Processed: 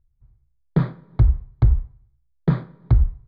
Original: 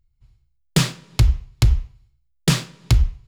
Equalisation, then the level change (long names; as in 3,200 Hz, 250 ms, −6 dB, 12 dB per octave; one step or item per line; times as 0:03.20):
moving average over 16 samples
high-frequency loss of the air 370 metres
0.0 dB